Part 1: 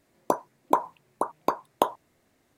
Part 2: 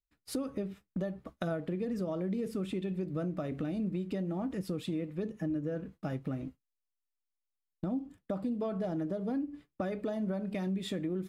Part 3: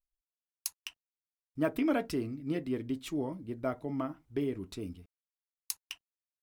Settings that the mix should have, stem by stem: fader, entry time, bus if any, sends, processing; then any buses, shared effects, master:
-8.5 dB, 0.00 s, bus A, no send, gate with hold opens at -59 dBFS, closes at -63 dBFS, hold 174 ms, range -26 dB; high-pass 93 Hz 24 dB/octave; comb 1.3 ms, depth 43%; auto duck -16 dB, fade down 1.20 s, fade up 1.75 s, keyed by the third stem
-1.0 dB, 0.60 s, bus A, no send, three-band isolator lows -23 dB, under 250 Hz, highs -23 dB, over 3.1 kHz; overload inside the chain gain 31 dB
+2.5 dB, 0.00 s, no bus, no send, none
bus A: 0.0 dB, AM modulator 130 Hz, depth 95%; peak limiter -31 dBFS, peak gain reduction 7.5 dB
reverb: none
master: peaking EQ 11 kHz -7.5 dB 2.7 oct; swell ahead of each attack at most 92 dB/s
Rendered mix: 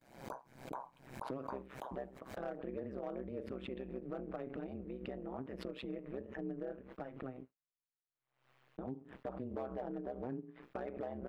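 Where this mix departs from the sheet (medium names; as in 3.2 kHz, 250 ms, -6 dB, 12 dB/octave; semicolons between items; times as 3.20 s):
stem 2: entry 0.60 s -> 0.95 s; stem 3: muted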